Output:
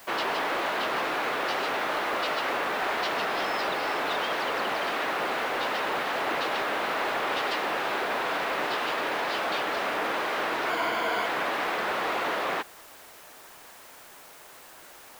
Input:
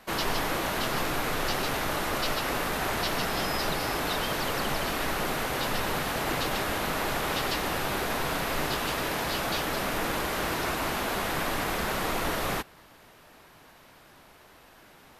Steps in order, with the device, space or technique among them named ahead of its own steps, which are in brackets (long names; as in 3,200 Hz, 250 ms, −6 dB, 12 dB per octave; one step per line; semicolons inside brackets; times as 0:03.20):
tape answering machine (band-pass filter 400–3,200 Hz; soft clipping −23 dBFS, distortion −22 dB; tape wow and flutter; white noise bed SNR 22 dB)
0:10.70–0:11.26: EQ curve with evenly spaced ripples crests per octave 1.8, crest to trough 9 dB
level +4 dB